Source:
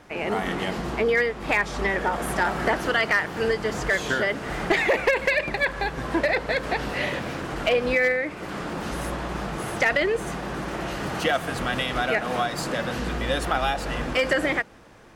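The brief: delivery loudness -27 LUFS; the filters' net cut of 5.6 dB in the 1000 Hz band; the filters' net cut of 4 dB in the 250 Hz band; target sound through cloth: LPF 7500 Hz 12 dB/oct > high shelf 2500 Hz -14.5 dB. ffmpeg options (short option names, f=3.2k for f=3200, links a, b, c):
-af "lowpass=7.5k,equalizer=f=250:t=o:g=-5,equalizer=f=1k:t=o:g=-5,highshelf=f=2.5k:g=-14.5,volume=2.5dB"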